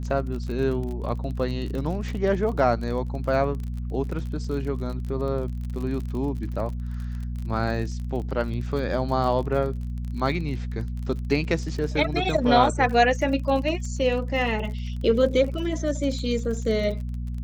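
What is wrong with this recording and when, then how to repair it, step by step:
crackle 35 per s -32 dBFS
hum 60 Hz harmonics 4 -30 dBFS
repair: de-click; de-hum 60 Hz, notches 4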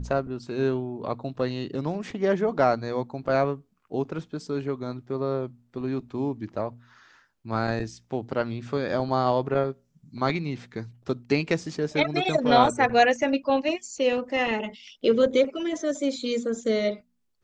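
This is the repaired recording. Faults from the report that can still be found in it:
nothing left

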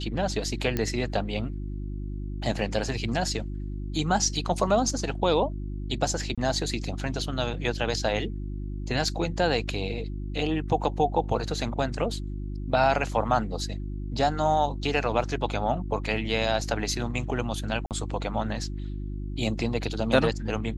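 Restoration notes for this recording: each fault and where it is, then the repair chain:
hum 50 Hz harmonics 7 -33 dBFS
0.77 s: pop -13 dBFS
6.35–6.38 s: dropout 26 ms
17.86–17.91 s: dropout 48 ms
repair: de-click; de-hum 50 Hz, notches 7; interpolate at 6.35 s, 26 ms; interpolate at 17.86 s, 48 ms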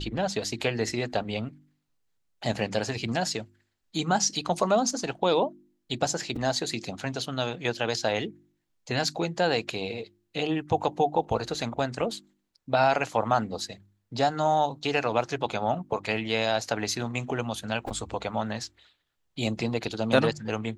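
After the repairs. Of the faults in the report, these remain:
nothing left

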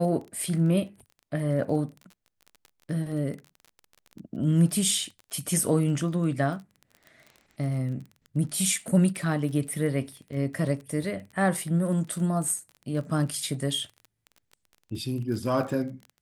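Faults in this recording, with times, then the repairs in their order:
crackle 23 per s -36 dBFS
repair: de-click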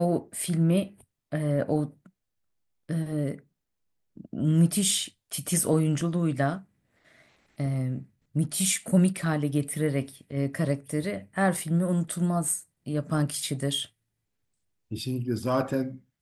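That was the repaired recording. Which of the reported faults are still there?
nothing left

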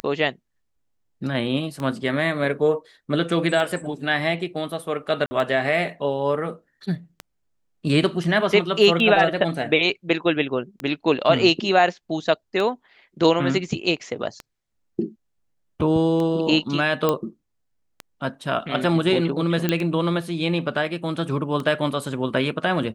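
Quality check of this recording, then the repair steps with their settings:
tick 33 1/3 rpm -16 dBFS
5.26–5.31 s: dropout 50 ms
17.09 s: pop -7 dBFS
19.69 s: pop -7 dBFS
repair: de-click; interpolate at 5.26 s, 50 ms

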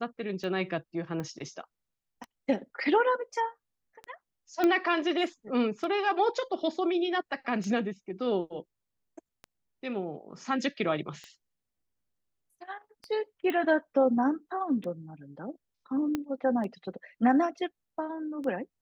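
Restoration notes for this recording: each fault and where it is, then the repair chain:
tick 33 1/3 rpm -27 dBFS
1.20 s: pop -24 dBFS
4.64 s: pop -14 dBFS
13.50 s: pop -19 dBFS
16.15 s: pop -17 dBFS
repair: de-click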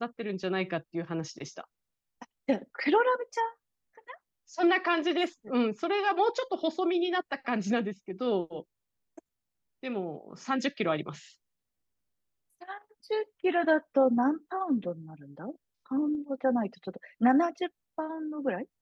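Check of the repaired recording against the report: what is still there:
1.20 s: pop
16.15 s: pop

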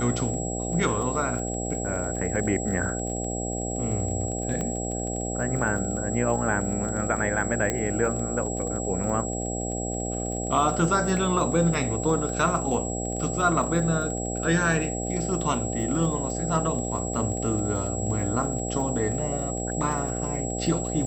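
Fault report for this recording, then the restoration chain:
buzz 60 Hz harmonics 13 -31 dBFS
crackle 27 per s -33 dBFS
whine 7.7 kHz -33 dBFS
4.61 s: pop -18 dBFS
7.70 s: pop -11 dBFS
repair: de-click; band-stop 7.7 kHz, Q 30; de-hum 60 Hz, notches 13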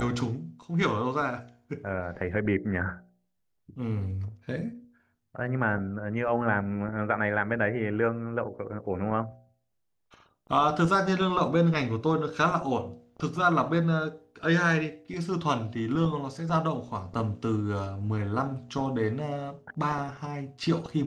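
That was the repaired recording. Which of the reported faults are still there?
4.61 s: pop

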